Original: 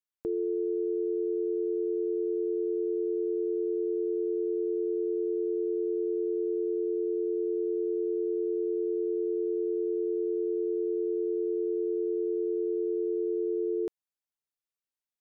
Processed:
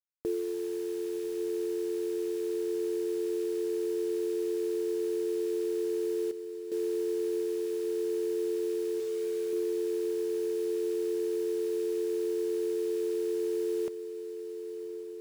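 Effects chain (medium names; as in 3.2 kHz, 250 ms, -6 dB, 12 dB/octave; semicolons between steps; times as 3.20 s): 9.00–9.53 s: band-stop 370 Hz, Q 12; reverb removal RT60 1.1 s; 6.31–6.72 s: differentiator; bit crusher 8-bit; on a send: echo that smears into a reverb 1111 ms, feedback 65%, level -12.5 dB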